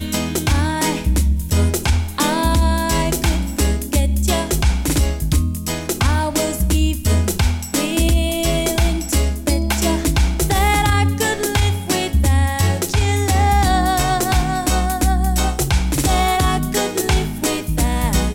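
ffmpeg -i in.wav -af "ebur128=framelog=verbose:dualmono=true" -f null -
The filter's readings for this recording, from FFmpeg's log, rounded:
Integrated loudness:
  I:         -15.0 LUFS
  Threshold: -25.0 LUFS
Loudness range:
  LRA:         1.8 LU
  Threshold: -34.9 LUFS
  LRA low:   -15.8 LUFS
  LRA high:  -14.1 LUFS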